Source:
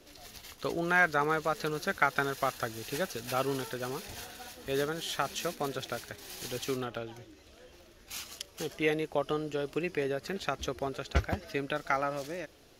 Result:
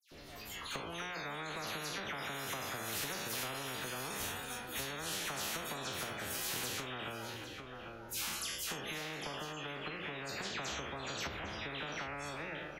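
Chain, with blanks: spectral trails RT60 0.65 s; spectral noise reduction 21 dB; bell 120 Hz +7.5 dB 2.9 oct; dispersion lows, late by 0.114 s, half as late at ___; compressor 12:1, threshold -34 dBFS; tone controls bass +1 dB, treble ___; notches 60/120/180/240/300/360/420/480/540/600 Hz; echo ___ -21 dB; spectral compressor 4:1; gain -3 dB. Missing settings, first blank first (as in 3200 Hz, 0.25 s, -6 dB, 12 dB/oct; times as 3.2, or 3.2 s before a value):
2700 Hz, -14 dB, 0.802 s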